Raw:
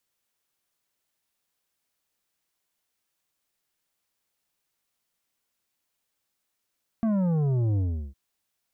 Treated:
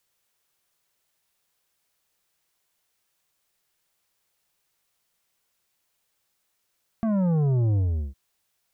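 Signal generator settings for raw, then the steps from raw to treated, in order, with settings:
sub drop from 230 Hz, over 1.11 s, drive 9 dB, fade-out 0.37 s, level -22.5 dB
peaking EQ 260 Hz -10 dB 0.29 oct; in parallel at -1.5 dB: peak limiter -29 dBFS

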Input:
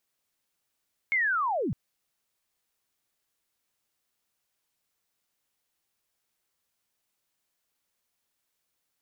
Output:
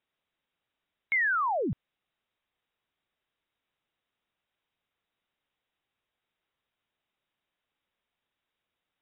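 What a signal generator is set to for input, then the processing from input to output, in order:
sweep linear 2.2 kHz -> 95 Hz -22 dBFS -> -26.5 dBFS 0.61 s
brick-wall FIR low-pass 3.9 kHz

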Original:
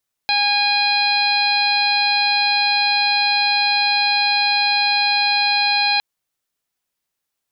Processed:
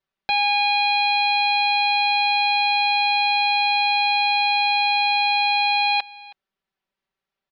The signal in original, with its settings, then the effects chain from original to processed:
steady additive tone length 5.71 s, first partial 820 Hz, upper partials -6/0.5/-8/2/-11 dB, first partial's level -20.5 dB
distance through air 250 m; comb 5.2 ms, depth 69%; delay 321 ms -21.5 dB

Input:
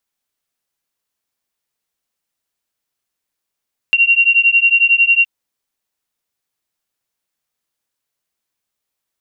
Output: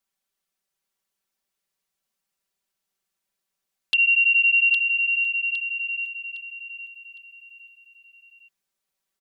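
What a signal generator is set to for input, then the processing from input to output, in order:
beating tones 2.75 kHz, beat 11 Hz, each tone -12 dBFS 1.32 s
peak limiter -12.5 dBFS; touch-sensitive flanger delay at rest 5.2 ms, full sweep at -19.5 dBFS; feedback delay 810 ms, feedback 35%, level -7 dB

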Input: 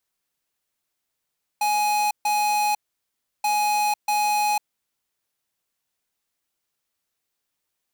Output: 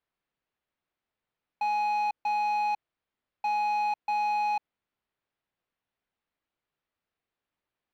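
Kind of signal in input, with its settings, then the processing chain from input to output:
beep pattern square 836 Hz, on 0.50 s, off 0.14 s, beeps 2, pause 0.69 s, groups 2, -21.5 dBFS
peak limiter -25 dBFS; distance through air 350 m

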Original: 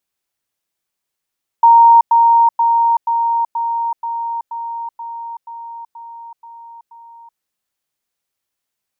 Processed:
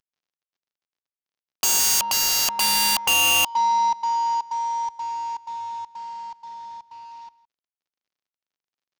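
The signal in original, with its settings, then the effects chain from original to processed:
level ladder 929 Hz -4 dBFS, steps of -3 dB, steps 12, 0.38 s 0.10 s
CVSD coder 32 kbps; echo from a far wall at 28 m, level -19 dB; integer overflow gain 15 dB

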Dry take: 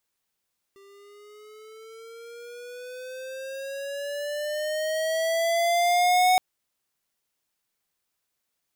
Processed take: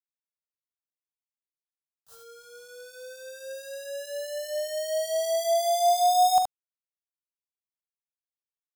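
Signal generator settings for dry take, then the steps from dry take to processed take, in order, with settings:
gliding synth tone square, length 5.62 s, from 393 Hz, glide +11 st, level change +33 dB, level -18.5 dB
small samples zeroed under -43.5 dBFS; static phaser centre 910 Hz, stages 4; early reflections 43 ms -12.5 dB, 73 ms -5 dB

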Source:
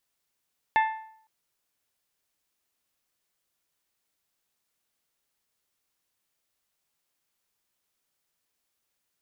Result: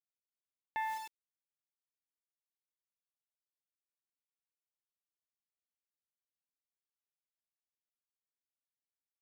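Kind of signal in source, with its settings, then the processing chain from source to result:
metal hit bell, length 0.51 s, lowest mode 881 Hz, decay 0.63 s, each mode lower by 6 dB, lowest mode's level -17 dB
local Wiener filter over 15 samples; word length cut 8-bit, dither none; reverse; compression 4:1, threshold -37 dBFS; reverse

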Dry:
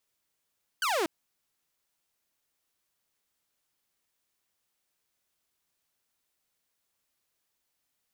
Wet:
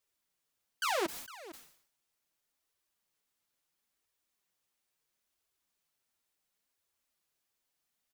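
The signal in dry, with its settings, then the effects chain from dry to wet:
laser zap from 1.6 kHz, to 300 Hz, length 0.24 s saw, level -23 dB
delay 457 ms -17 dB; flange 0.73 Hz, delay 1.6 ms, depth 7.6 ms, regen -22%; decay stretcher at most 90 dB/s

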